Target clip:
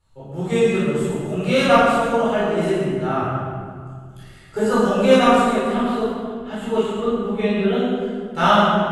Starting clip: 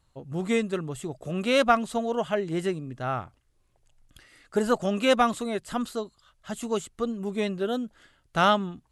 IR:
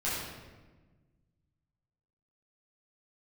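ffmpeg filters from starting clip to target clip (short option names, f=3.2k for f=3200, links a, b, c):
-filter_complex "[0:a]asettb=1/sr,asplit=3[a][b][c];[a]atrim=end=5.564[d];[b]atrim=start=5.56:end=7.78,asetpts=PTS-STARTPTS,afade=t=in:d=0.004:c=qsin,afade=t=out:st=2.216:d=0.004:c=qsin,highshelf=f=4.2k:t=q:w=1.5:g=-8.5[e];[c]atrim=start=7.776[f];[d][e]acrossfade=d=0.004:c1=hsin:c2=qsin[g];[g][f]acrossfade=d=0.004:c1=qsin:c2=hsin[h];[1:a]atrim=start_sample=2205,asetrate=26460,aresample=44100[i];[h][i]afir=irnorm=-1:irlink=0,volume=-3.5dB"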